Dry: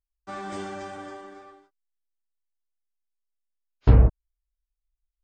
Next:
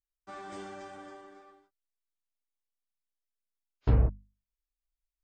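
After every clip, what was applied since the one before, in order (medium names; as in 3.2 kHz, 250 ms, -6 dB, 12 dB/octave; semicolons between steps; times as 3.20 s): hum notches 50/100/150/200/250 Hz; trim -8 dB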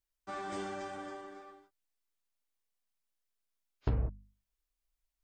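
compression 5:1, threshold -33 dBFS, peak gain reduction 13 dB; trim +3.5 dB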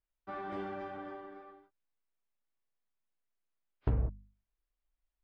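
distance through air 390 m; trim +1 dB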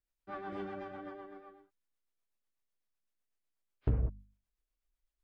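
rotary cabinet horn 8 Hz; trim +1 dB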